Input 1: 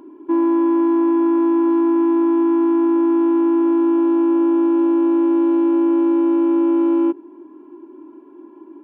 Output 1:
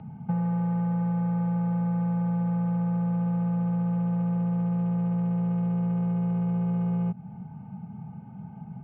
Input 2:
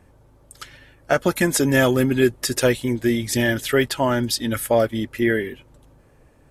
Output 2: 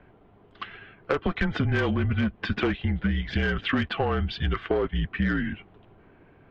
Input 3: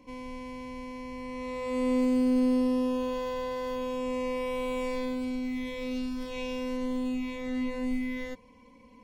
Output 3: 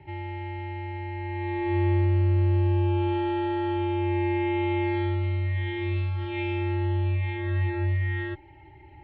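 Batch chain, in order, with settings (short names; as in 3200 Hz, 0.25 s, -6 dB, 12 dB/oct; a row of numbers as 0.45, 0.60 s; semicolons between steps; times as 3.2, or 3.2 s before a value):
mistuned SSB -160 Hz 170–3400 Hz; soft clip -14 dBFS; compressor 10:1, threshold -25 dBFS; match loudness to -27 LUFS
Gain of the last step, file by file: +0.5, +3.5, +6.5 dB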